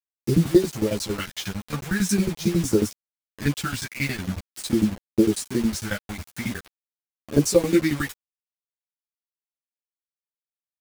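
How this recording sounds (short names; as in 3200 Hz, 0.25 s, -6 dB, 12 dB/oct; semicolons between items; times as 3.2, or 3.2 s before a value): tremolo saw down 11 Hz, depth 95%; phasing stages 2, 0.45 Hz, lowest notch 340–2100 Hz; a quantiser's noise floor 6-bit, dither none; a shimmering, thickened sound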